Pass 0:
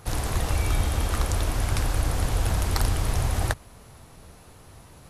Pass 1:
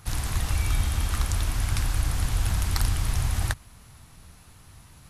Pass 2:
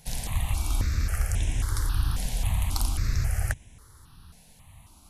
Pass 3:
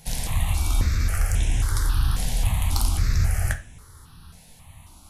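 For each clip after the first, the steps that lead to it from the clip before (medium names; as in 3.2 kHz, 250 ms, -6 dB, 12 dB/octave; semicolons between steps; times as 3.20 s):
peaking EQ 490 Hz -11.5 dB 1.6 oct
stepped phaser 3.7 Hz 330–4500 Hz
saturation -14 dBFS, distortion -26 dB; reverberation RT60 0.35 s, pre-delay 12 ms, DRR 6 dB; trim +4 dB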